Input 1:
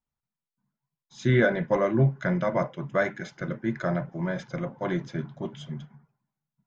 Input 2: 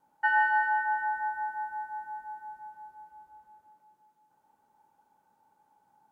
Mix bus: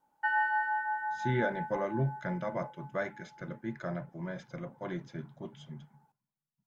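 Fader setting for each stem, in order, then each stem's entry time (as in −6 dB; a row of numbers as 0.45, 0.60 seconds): −9.5, −4.5 decibels; 0.00, 0.00 seconds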